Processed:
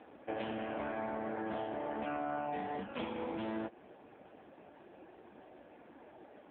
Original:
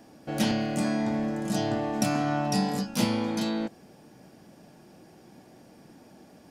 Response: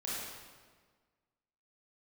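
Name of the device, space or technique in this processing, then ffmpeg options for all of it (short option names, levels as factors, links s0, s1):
voicemail: -filter_complex "[0:a]asplit=3[s0][s1][s2];[s0]afade=t=out:st=0.69:d=0.02[s3];[s1]equalizer=f=1100:t=o:w=1.2:g=6,afade=t=in:st=0.69:d=0.02,afade=t=out:st=1.64:d=0.02[s4];[s2]afade=t=in:st=1.64:d=0.02[s5];[s3][s4][s5]amix=inputs=3:normalize=0,highpass=390,lowpass=2700,acompressor=threshold=0.0141:ratio=8,volume=1.58" -ar 8000 -c:a libopencore_amrnb -b:a 5150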